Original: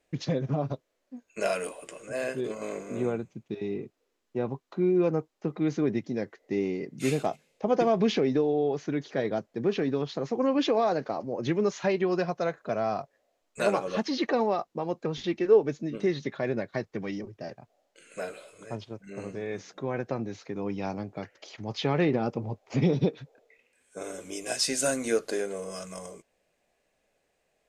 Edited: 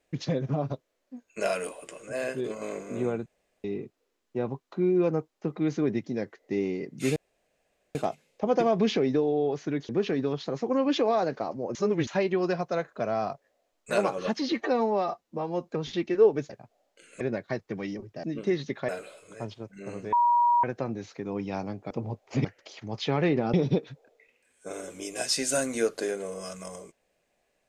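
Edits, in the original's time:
0:03.26–0:03.64: fill with room tone
0:07.16: splice in room tone 0.79 s
0:09.10–0:09.58: remove
0:11.44–0:11.76: reverse
0:14.21–0:14.98: time-stretch 1.5×
0:15.80–0:16.45: swap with 0:17.48–0:18.19
0:19.43–0:19.94: beep over 957 Hz −18.5 dBFS
0:22.30–0:22.84: move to 0:21.21

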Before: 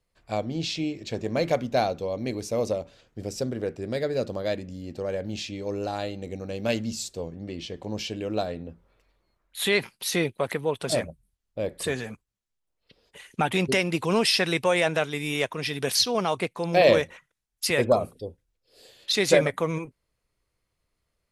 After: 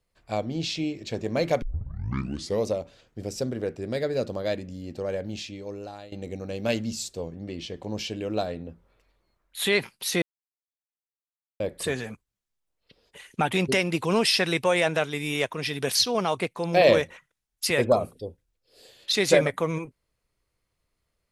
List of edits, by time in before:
0:01.62: tape start 1.04 s
0:05.13–0:06.12: fade out, to −16 dB
0:10.22–0:11.60: silence

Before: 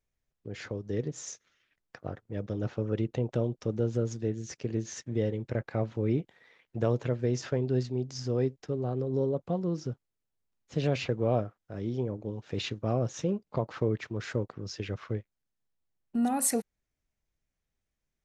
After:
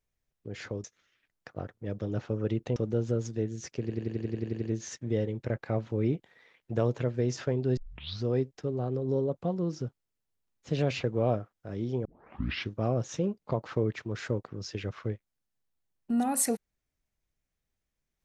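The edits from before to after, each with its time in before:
0:00.84–0:01.32: remove
0:03.24–0:03.62: remove
0:04.67: stutter 0.09 s, 10 plays
0:07.82: tape start 0.48 s
0:12.10: tape start 0.68 s

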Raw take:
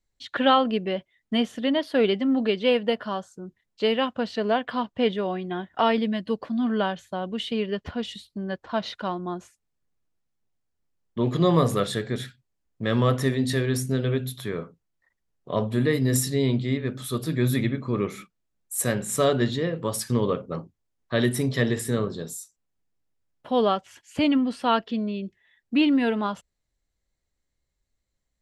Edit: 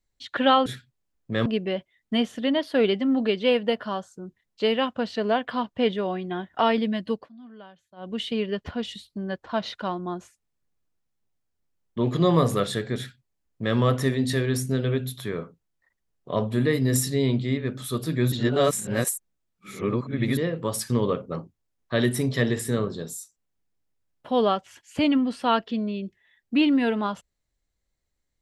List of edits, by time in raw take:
0:06.31–0:07.34: duck −21 dB, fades 0.18 s
0:12.17–0:12.97: duplicate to 0:00.66
0:17.52–0:19.57: reverse

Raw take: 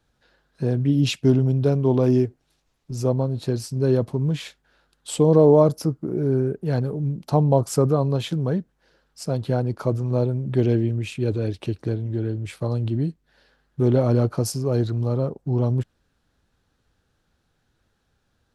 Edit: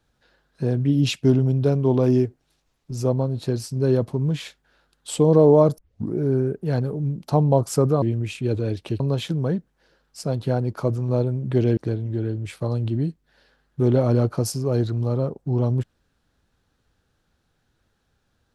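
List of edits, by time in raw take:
0:05.78: tape start 0.36 s
0:10.79–0:11.77: move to 0:08.02

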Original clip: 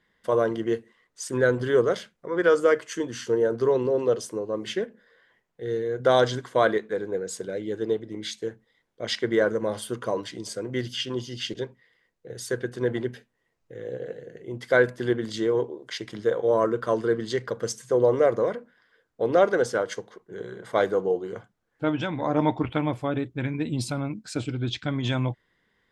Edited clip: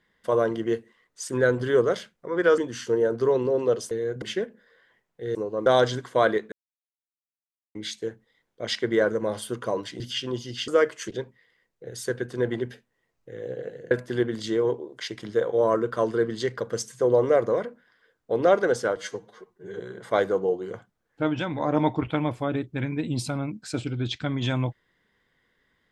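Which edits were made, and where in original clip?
0:02.58–0:02.98: move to 0:11.51
0:04.31–0:04.62: swap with 0:05.75–0:06.06
0:06.92–0:08.15: silence
0:10.40–0:10.83: remove
0:14.34–0:14.81: remove
0:19.86–0:20.42: time-stretch 1.5×

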